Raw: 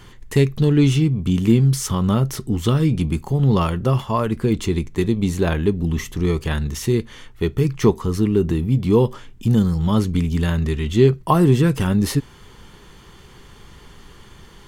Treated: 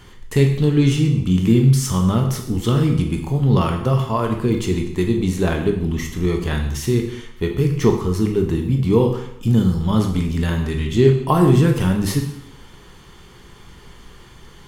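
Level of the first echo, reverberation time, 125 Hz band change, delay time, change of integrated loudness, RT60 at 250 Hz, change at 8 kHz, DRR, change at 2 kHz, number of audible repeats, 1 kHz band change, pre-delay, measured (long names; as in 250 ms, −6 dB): no echo audible, 0.75 s, +1.0 dB, no echo audible, +1.0 dB, 0.75 s, +0.5 dB, 3.0 dB, +1.0 dB, no echo audible, +0.5 dB, 7 ms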